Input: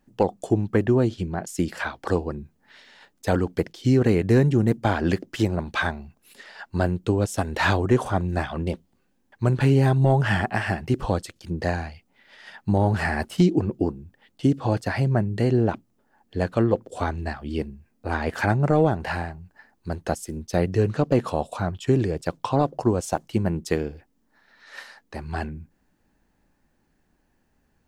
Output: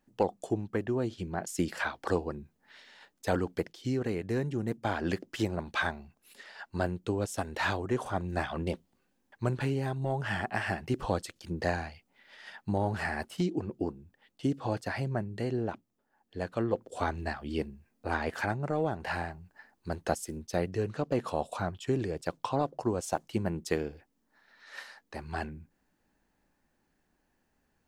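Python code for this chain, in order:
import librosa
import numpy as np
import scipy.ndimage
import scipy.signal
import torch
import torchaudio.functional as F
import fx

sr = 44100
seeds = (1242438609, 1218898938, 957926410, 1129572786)

y = fx.rider(x, sr, range_db=4, speed_s=0.5)
y = fx.low_shelf(y, sr, hz=250.0, db=-6.0)
y = y * 10.0 ** (-6.5 / 20.0)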